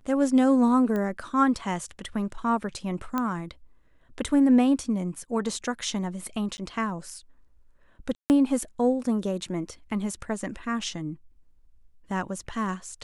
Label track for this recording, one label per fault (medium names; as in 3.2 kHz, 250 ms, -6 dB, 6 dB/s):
0.960000	0.960000	pop -19 dBFS
3.180000	3.180000	pop -14 dBFS
6.570000	6.580000	dropout 10 ms
8.150000	8.300000	dropout 149 ms